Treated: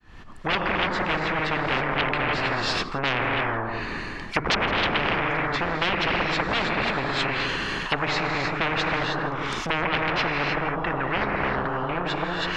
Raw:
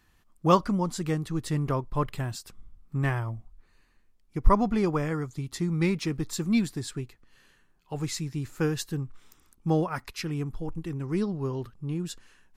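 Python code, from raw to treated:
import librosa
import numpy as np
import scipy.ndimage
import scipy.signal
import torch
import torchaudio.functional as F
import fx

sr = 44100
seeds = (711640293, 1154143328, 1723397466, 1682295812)

p1 = fx.fade_in_head(x, sr, length_s=1.17)
p2 = scipy.signal.sosfilt(scipy.signal.butter(2, 4700.0, 'lowpass', fs=sr, output='sos'), p1)
p3 = fx.high_shelf(p2, sr, hz=3700.0, db=-7.5)
p4 = fx.hum_notches(p3, sr, base_hz=50, count=3)
p5 = fx.rev_gated(p4, sr, seeds[0], gate_ms=340, shape='rising', drr_db=2.0)
p6 = fx.fold_sine(p5, sr, drive_db=18, ceiling_db=-7.0)
p7 = fx.env_lowpass_down(p6, sr, base_hz=1000.0, full_db=-11.0)
p8 = p7 + fx.echo_single(p7, sr, ms=165, db=-20.0, dry=0)
p9 = fx.spectral_comp(p8, sr, ratio=10.0)
y = F.gain(torch.from_numpy(p9), -2.5).numpy()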